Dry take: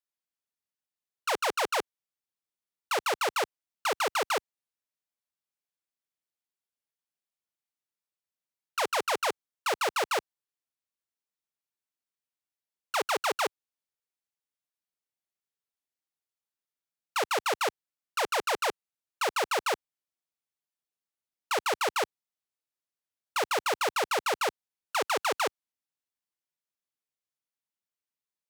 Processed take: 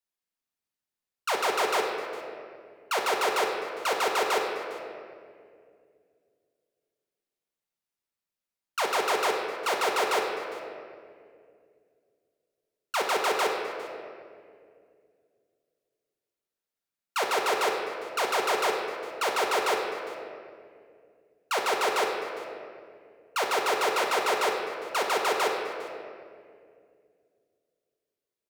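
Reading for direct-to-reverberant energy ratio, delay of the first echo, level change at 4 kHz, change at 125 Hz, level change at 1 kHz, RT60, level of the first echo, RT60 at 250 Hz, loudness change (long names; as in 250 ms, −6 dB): 0.0 dB, 405 ms, +2.0 dB, can't be measured, +3.0 dB, 2.3 s, −19.0 dB, 3.1 s, +2.0 dB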